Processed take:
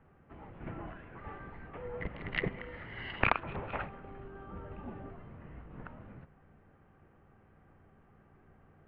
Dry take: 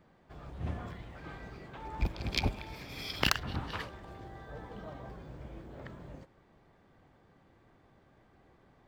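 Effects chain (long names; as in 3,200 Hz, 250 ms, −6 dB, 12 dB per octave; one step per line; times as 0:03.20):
hum with harmonics 60 Hz, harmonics 5, −52 dBFS −9 dB per octave
single-sideband voice off tune −390 Hz 240–2,900 Hz
level +3 dB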